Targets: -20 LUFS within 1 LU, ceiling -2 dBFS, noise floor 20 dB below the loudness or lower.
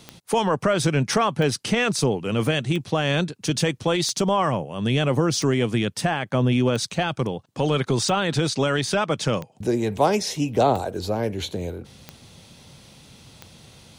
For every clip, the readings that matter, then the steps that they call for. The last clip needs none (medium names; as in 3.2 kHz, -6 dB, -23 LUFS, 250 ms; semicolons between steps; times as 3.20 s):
clicks found 11; loudness -23.0 LUFS; peak level -7.0 dBFS; loudness target -20.0 LUFS
-> de-click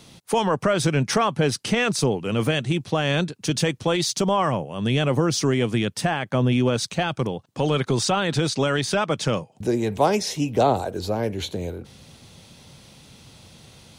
clicks found 0; loudness -23.0 LUFS; peak level -7.0 dBFS; loudness target -20.0 LUFS
-> trim +3 dB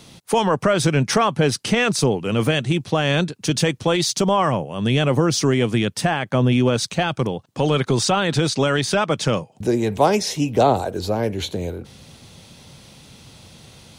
loudness -20.0 LUFS; peak level -4.0 dBFS; noise floor -50 dBFS